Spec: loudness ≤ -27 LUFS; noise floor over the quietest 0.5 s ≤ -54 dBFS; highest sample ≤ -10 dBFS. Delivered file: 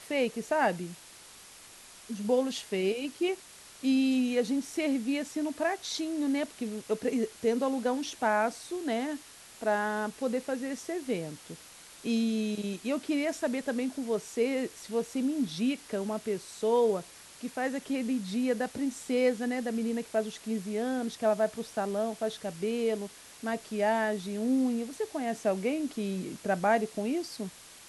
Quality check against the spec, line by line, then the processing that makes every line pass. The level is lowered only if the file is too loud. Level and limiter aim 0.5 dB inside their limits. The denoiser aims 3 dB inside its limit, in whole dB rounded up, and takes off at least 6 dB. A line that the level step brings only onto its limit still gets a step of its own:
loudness -31.0 LUFS: OK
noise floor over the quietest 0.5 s -52 dBFS: fail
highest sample -14.0 dBFS: OK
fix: denoiser 6 dB, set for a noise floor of -52 dBFS

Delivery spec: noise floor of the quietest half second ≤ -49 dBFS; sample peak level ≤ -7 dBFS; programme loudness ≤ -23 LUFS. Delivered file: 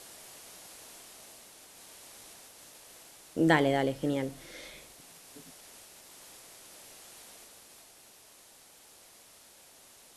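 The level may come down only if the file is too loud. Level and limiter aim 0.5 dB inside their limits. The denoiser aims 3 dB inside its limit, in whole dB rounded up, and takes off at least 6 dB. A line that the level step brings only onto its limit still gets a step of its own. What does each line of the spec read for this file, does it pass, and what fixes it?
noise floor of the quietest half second -57 dBFS: OK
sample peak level -9.5 dBFS: OK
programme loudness -29.5 LUFS: OK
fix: none

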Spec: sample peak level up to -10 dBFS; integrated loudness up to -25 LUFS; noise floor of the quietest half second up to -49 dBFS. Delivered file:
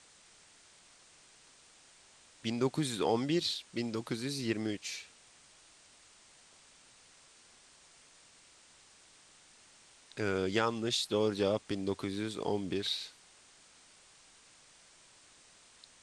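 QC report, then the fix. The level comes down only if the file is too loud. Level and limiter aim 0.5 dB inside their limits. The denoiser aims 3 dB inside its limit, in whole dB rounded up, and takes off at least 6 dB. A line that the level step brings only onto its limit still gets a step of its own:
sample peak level -15.0 dBFS: OK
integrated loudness -34.0 LUFS: OK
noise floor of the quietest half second -61 dBFS: OK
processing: none

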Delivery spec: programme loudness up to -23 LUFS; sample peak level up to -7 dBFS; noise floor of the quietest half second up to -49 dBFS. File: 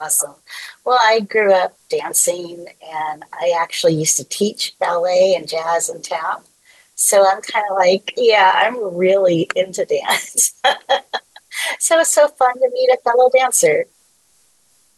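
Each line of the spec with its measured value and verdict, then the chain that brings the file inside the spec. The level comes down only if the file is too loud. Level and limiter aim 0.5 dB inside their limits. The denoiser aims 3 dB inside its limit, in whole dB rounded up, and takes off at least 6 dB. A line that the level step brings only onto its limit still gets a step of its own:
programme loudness -16.0 LUFS: fail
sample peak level -3.0 dBFS: fail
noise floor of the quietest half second -57 dBFS: OK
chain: gain -7.5 dB

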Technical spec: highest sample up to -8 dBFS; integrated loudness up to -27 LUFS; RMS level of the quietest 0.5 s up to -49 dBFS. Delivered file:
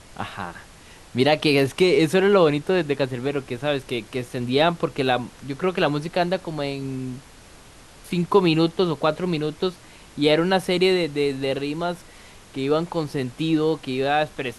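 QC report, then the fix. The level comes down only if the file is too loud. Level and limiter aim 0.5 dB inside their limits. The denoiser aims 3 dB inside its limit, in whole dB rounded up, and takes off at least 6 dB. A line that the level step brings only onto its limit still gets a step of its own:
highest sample -4.5 dBFS: fail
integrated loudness -22.5 LUFS: fail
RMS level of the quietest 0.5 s -47 dBFS: fail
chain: gain -5 dB

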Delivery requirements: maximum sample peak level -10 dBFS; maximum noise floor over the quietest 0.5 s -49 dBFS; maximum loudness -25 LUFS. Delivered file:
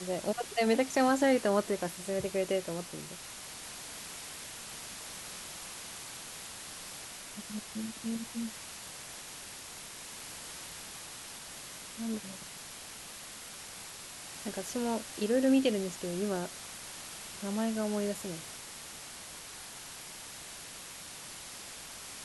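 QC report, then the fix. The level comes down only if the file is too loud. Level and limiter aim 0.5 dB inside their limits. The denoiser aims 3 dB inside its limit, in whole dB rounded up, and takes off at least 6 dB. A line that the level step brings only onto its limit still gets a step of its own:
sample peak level -15.5 dBFS: OK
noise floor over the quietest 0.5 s -46 dBFS: fail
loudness -36.0 LUFS: OK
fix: denoiser 6 dB, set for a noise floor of -46 dBFS

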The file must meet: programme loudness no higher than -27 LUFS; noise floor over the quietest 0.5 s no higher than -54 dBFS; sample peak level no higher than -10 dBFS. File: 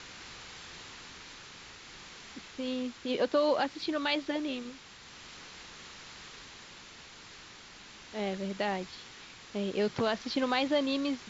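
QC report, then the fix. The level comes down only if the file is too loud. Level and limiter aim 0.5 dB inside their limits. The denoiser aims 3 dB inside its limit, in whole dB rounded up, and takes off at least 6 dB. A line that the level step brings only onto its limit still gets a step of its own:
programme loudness -32.0 LUFS: OK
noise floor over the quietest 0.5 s -51 dBFS: fail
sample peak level -16.0 dBFS: OK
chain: denoiser 6 dB, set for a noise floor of -51 dBFS

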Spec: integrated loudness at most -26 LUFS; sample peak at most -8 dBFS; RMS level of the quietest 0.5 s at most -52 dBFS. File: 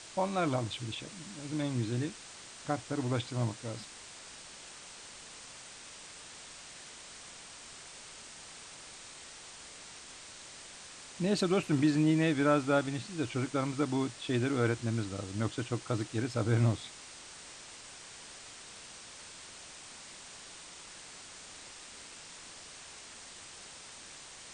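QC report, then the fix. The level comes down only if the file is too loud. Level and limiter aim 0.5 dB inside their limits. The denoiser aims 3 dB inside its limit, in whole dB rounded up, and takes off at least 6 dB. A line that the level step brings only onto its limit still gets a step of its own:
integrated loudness -32.5 LUFS: OK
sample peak -15.5 dBFS: OK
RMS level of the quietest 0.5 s -50 dBFS: fail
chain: denoiser 6 dB, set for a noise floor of -50 dBFS

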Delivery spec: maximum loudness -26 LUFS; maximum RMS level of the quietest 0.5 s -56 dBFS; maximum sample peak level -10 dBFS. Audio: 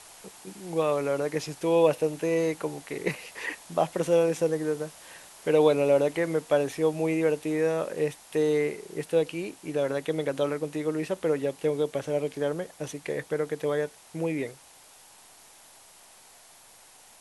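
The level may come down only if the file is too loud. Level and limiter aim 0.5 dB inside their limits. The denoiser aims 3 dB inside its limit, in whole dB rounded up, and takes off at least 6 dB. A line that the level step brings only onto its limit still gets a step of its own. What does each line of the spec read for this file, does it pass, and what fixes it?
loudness -27.5 LUFS: OK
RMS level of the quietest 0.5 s -54 dBFS: fail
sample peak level -9.0 dBFS: fail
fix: denoiser 6 dB, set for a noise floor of -54 dBFS; limiter -10.5 dBFS

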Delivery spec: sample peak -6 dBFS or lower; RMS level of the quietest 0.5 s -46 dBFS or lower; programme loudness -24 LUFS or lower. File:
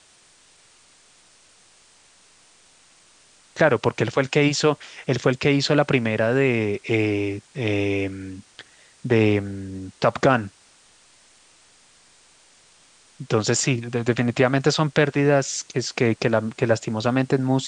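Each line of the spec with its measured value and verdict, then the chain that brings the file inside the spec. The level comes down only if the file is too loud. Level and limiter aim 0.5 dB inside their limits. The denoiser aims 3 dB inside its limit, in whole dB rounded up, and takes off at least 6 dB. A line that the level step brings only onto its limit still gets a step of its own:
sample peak -2.5 dBFS: fail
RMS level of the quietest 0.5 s -55 dBFS: OK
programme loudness -21.5 LUFS: fail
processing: gain -3 dB; limiter -6.5 dBFS

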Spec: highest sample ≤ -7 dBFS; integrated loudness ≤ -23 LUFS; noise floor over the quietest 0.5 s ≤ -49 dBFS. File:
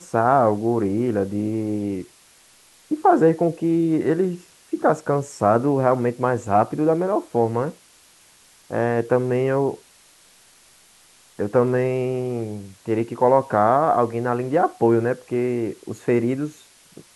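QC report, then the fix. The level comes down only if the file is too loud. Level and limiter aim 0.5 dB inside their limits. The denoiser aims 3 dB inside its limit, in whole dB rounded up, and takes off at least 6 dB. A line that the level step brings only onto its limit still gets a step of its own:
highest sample -4.0 dBFS: fail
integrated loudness -21.0 LUFS: fail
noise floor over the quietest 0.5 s -53 dBFS: OK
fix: gain -2.5 dB; limiter -7.5 dBFS

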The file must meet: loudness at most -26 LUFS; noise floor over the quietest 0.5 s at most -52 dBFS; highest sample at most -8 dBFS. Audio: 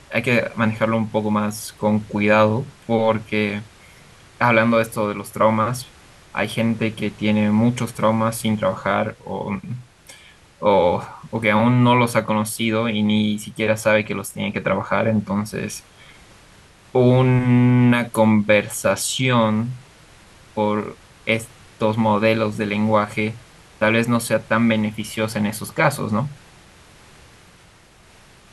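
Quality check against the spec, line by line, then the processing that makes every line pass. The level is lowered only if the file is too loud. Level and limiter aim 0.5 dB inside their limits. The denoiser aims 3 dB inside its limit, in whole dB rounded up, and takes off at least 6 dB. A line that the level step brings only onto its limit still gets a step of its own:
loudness -19.5 LUFS: fail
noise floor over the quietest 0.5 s -50 dBFS: fail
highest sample -3.0 dBFS: fail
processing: gain -7 dB

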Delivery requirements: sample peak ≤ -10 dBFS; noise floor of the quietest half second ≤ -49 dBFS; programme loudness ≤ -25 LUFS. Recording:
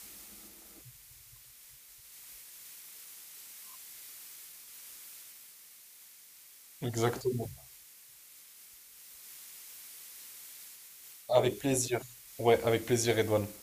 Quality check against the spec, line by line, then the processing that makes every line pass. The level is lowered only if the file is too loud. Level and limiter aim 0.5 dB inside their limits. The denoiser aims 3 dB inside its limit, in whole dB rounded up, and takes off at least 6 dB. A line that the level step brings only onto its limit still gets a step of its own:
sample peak -10.5 dBFS: OK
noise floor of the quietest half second -56 dBFS: OK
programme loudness -33.0 LUFS: OK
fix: none

